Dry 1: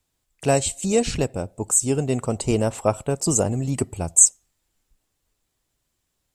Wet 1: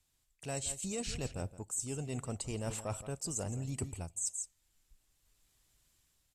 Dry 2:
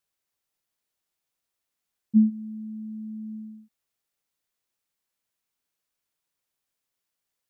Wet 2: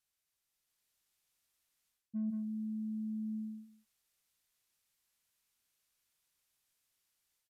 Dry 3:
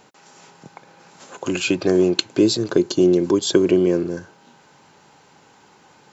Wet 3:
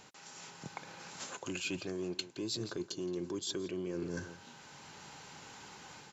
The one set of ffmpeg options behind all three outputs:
-filter_complex "[0:a]dynaudnorm=f=460:g=3:m=5.5dB,asplit=2[a][b];[b]asoftclip=type=tanh:threshold=-17dB,volume=-8dB[c];[a][c]amix=inputs=2:normalize=0,asplit=2[d][e];[e]adelay=169.1,volume=-16dB,highshelf=f=4k:g=-3.8[f];[d][f]amix=inputs=2:normalize=0,alimiter=limit=-6.5dB:level=0:latency=1:release=429,equalizer=f=440:w=0.34:g=-8,areverse,acompressor=threshold=-31dB:ratio=16,areverse,aresample=32000,aresample=44100,volume=-3.5dB"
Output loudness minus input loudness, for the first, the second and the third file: -17.5, -12.0, -22.0 LU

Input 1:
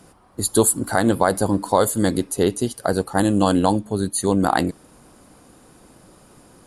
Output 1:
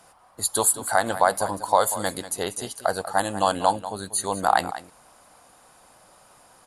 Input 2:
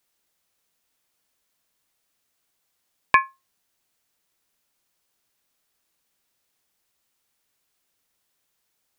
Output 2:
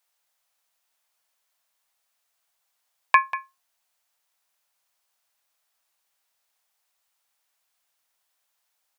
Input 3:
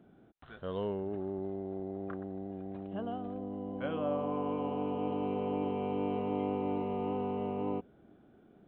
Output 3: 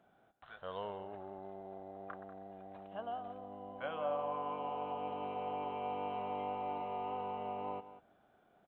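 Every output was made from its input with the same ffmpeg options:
-filter_complex "[0:a]lowshelf=f=490:t=q:w=1.5:g=-11.5,asplit=2[a][b];[b]aecho=0:1:191:0.211[c];[a][c]amix=inputs=2:normalize=0,volume=-1.5dB"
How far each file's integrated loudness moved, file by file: -4.0, -1.0, -5.5 LU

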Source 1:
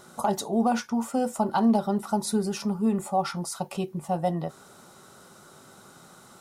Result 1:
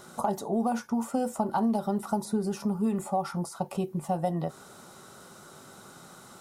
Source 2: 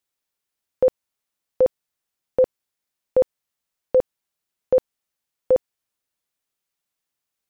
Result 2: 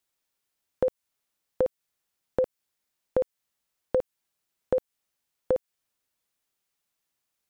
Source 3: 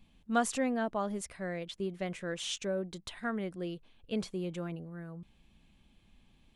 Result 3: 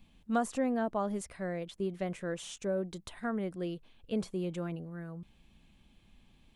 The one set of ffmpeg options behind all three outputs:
-filter_complex "[0:a]acrossover=split=1400|7400[a][b][c];[a]acompressor=threshold=-26dB:ratio=4[d];[b]acompressor=threshold=-52dB:ratio=4[e];[c]acompressor=threshold=-48dB:ratio=4[f];[d][e][f]amix=inputs=3:normalize=0,volume=1.5dB"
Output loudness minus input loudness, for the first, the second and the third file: -3.0, -8.0, 0.0 LU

